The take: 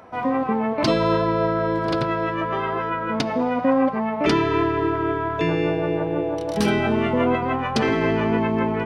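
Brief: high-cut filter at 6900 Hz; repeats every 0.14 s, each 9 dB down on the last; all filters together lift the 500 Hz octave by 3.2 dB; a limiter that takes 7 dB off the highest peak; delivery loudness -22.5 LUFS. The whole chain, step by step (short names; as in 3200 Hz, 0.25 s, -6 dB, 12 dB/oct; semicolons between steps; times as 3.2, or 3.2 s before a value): LPF 6900 Hz; bell 500 Hz +4 dB; limiter -13.5 dBFS; feedback echo 0.14 s, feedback 35%, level -9 dB; gain -0.5 dB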